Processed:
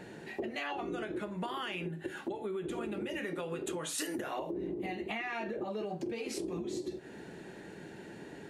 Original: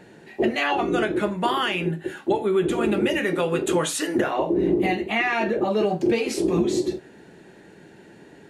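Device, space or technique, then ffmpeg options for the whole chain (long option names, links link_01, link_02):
serial compression, peaks first: -filter_complex "[0:a]acompressor=threshold=-31dB:ratio=6,acompressor=threshold=-36dB:ratio=2.5,asettb=1/sr,asplit=3[link_01][link_02][link_03];[link_01]atrim=end=3.984[link_04];[link_02]atrim=start=3.98:end=4.51,asetpts=PTS-STARTPTS,afade=type=in:duration=0.004:curve=qsin,afade=type=out:start_time=0.526:duration=0.004:curve=qsin,aemphasis=mode=production:type=50kf[link_05];[link_03]atrim=start=4.506[link_06];[link_04][link_05]acrossfade=duration=0.004:curve1=hsin:curve2=qsin[link_07];[link_07][link_06]acrossfade=duration=0.004:curve1=qsin:curve2=hsin"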